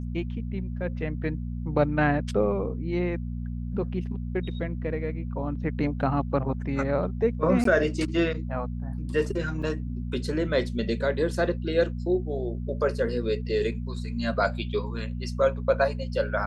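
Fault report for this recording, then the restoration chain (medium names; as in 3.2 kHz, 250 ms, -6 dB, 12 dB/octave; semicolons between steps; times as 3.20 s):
hum 60 Hz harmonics 4 -32 dBFS
7.64–7.65 s: dropout 13 ms
9.62 s: dropout 4.9 ms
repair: de-hum 60 Hz, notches 4; interpolate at 7.64 s, 13 ms; interpolate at 9.62 s, 4.9 ms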